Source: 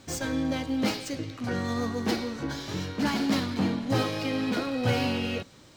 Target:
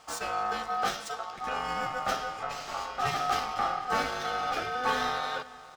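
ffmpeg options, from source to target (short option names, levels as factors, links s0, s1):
-filter_complex "[0:a]asplit=2[s0][s1];[s1]adelay=495.6,volume=0.126,highshelf=f=4000:g=-11.2[s2];[s0][s2]amix=inputs=2:normalize=0,aeval=exprs='val(0)*sin(2*PI*1000*n/s)':c=same"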